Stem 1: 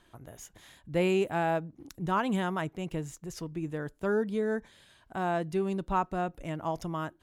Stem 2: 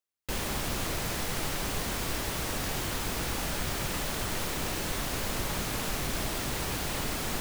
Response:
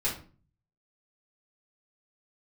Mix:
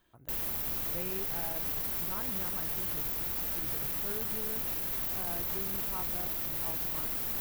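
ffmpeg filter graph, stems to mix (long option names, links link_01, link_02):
-filter_complex "[0:a]volume=-8.5dB[link_01];[1:a]aexciter=amount=5.7:drive=6.2:freq=11000,volume=-4.5dB[link_02];[link_01][link_02]amix=inputs=2:normalize=0,alimiter=level_in=0.5dB:limit=-24dB:level=0:latency=1,volume=-0.5dB"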